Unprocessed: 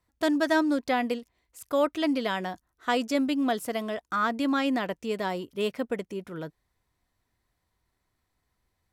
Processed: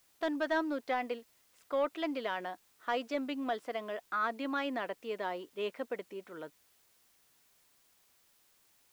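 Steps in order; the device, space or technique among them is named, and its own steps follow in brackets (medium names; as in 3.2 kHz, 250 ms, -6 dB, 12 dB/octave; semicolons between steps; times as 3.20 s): tape answering machine (band-pass 370–3300 Hz; saturation -15.5 dBFS, distortion -22 dB; wow and flutter; white noise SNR 31 dB); trim -5 dB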